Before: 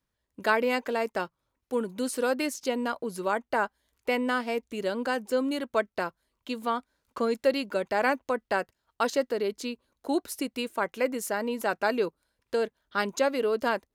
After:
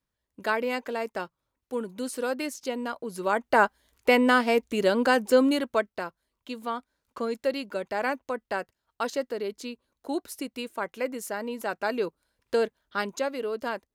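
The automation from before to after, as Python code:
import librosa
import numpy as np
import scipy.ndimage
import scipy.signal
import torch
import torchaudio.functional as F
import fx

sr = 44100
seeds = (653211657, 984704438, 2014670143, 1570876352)

y = fx.gain(x, sr, db=fx.line((3.03, -2.5), (3.61, 7.0), (5.45, 7.0), (6.0, -3.0), (11.77, -3.0), (12.57, 3.0), (13.3, -4.5)))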